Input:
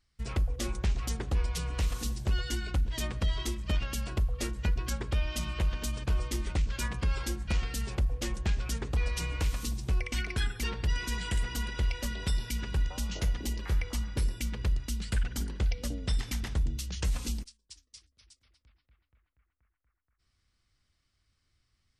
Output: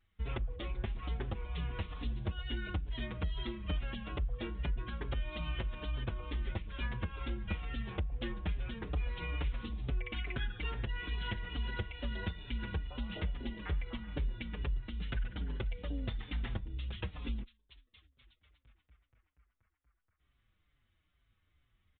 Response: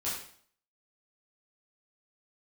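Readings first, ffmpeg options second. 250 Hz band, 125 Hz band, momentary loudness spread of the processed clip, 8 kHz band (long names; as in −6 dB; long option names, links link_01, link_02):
−4.5 dB, −6.5 dB, 2 LU, below −40 dB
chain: -filter_complex "[0:a]acompressor=threshold=-34dB:ratio=6,aresample=8000,aresample=44100,asplit=2[link_01][link_02];[link_02]adelay=5.6,afreqshift=-2.3[link_03];[link_01][link_03]amix=inputs=2:normalize=1,volume=3.5dB"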